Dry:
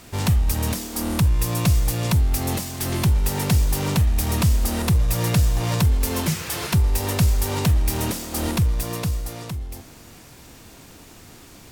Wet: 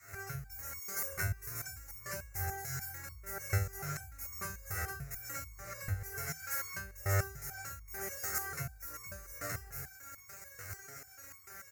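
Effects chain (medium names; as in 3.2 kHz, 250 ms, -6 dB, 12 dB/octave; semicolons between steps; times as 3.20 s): single-diode clipper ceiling -21.5 dBFS; on a send: delay 237 ms -23.5 dB; on the sum: reverberation, pre-delay 3 ms, DRR -2 dB; in parallel at -5.5 dB: bit crusher 5-bit; on the sum: compression 6:1, threshold -15 dBFS, peak gain reduction 14.5 dB; fifteen-band graphic EQ 1.6 kHz +9 dB, 6.3 kHz +3 dB, 16 kHz +12 dB; level rider gain up to 6 dB; high-pass 59 Hz; bass shelf 170 Hz -4 dB; static phaser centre 930 Hz, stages 6; resonator arpeggio 6.8 Hz 98–1100 Hz; trim -6.5 dB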